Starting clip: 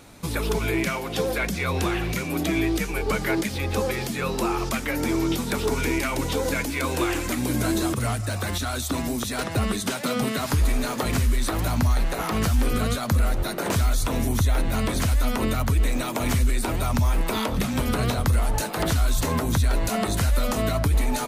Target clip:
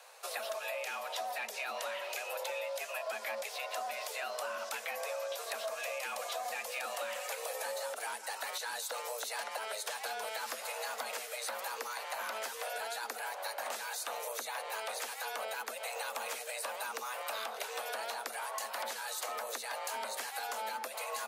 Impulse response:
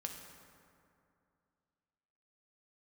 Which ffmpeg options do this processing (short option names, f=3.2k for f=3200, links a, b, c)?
-filter_complex "[0:a]highpass=f=330:w=0.5412,highpass=f=330:w=1.3066,acrossover=split=520|2200[a][b][c];[b]aeval=exprs='clip(val(0),-1,0.0376)':c=same[d];[a][d][c]amix=inputs=3:normalize=0,afreqshift=220,acompressor=threshold=-30dB:ratio=6,volume=-5.5dB"